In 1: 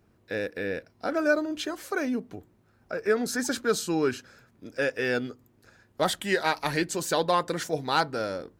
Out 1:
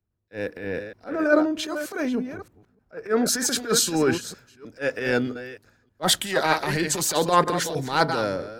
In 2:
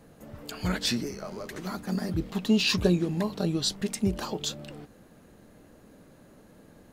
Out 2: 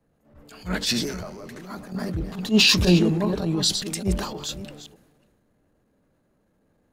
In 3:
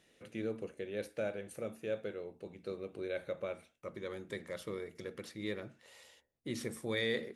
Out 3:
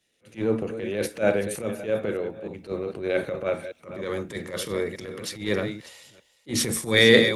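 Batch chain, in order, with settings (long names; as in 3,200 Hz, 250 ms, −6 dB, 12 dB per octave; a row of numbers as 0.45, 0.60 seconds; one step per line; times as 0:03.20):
delay that plays each chunk backwards 310 ms, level −10 dB
transient designer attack −12 dB, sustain +3 dB
multiband upward and downward expander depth 70%
normalise the peak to −3 dBFS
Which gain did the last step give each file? +5.5, +3.5, +15.5 decibels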